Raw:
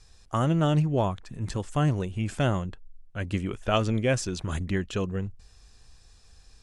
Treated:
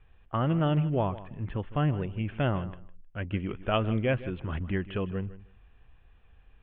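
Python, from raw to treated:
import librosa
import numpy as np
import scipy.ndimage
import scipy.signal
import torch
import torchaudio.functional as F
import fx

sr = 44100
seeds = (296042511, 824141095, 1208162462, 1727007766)

p1 = scipy.signal.sosfilt(scipy.signal.butter(12, 3200.0, 'lowpass', fs=sr, output='sos'), x)
p2 = p1 + fx.echo_feedback(p1, sr, ms=156, feedback_pct=18, wet_db=-16, dry=0)
y = p2 * 10.0 ** (-2.5 / 20.0)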